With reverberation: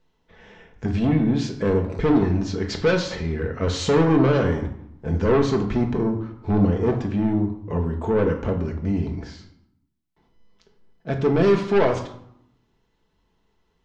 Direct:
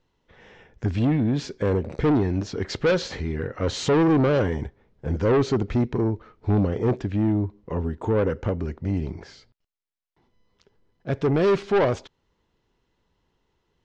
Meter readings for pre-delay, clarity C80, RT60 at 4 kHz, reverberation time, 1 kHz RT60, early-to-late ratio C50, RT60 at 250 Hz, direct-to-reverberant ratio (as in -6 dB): 5 ms, 12.0 dB, 0.50 s, 0.75 s, 0.80 s, 9.5 dB, 1.1 s, 2.5 dB